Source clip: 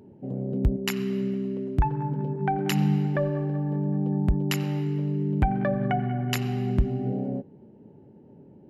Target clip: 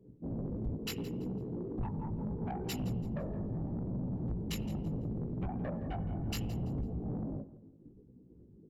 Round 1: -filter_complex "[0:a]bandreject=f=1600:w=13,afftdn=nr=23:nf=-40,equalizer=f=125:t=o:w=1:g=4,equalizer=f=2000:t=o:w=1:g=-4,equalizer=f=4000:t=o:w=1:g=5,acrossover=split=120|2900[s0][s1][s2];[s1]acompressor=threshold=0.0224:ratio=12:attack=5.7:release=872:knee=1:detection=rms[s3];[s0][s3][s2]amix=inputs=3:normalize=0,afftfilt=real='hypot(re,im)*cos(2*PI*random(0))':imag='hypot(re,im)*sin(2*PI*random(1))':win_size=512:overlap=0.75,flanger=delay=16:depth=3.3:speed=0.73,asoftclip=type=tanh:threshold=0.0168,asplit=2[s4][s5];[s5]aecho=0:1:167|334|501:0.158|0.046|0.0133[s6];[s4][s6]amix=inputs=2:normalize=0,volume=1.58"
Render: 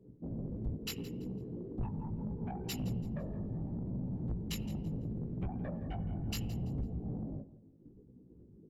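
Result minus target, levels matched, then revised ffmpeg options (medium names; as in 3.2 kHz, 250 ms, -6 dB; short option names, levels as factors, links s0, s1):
compression: peak gain reduction +5.5 dB
-filter_complex "[0:a]bandreject=f=1600:w=13,afftdn=nr=23:nf=-40,equalizer=f=125:t=o:w=1:g=4,equalizer=f=2000:t=o:w=1:g=-4,equalizer=f=4000:t=o:w=1:g=5,acrossover=split=120|2900[s0][s1][s2];[s1]acompressor=threshold=0.0447:ratio=12:attack=5.7:release=872:knee=1:detection=rms[s3];[s0][s3][s2]amix=inputs=3:normalize=0,afftfilt=real='hypot(re,im)*cos(2*PI*random(0))':imag='hypot(re,im)*sin(2*PI*random(1))':win_size=512:overlap=0.75,flanger=delay=16:depth=3.3:speed=0.73,asoftclip=type=tanh:threshold=0.0168,asplit=2[s4][s5];[s5]aecho=0:1:167|334|501:0.158|0.046|0.0133[s6];[s4][s6]amix=inputs=2:normalize=0,volume=1.58"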